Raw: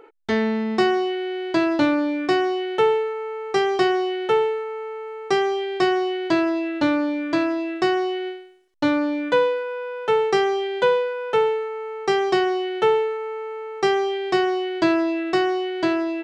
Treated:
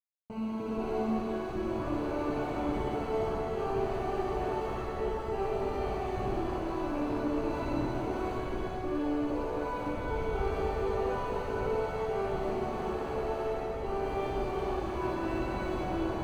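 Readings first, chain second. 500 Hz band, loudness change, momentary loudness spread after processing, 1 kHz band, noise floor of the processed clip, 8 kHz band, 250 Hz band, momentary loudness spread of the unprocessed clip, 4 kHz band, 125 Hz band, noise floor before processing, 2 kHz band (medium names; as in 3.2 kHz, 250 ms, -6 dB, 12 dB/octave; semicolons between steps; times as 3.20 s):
-11.5 dB, -11.0 dB, 3 LU, -9.5 dB, -36 dBFS, no reading, -11.0 dB, 8 LU, -19.0 dB, +4.5 dB, -35 dBFS, -15.5 dB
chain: chunks repeated in reverse 299 ms, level -1 dB; reverb removal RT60 1.3 s; peaking EQ 400 Hz -7.5 dB 0.72 oct; slow attack 161 ms; peak limiter -19.5 dBFS, peak gain reduction 10.5 dB; Schmitt trigger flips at -38 dBFS; boxcar filter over 25 samples; flutter echo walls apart 10.6 m, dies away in 0.62 s; pitch-shifted reverb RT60 3 s, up +7 st, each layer -8 dB, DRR -6.5 dB; trim -6.5 dB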